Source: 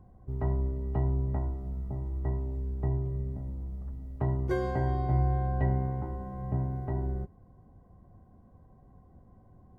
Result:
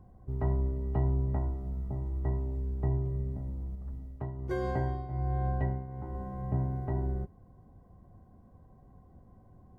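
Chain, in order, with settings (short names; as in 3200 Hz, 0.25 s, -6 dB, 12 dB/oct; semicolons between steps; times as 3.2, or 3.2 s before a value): 3.75–6.15 tremolo triangle 1.3 Hz, depth 75%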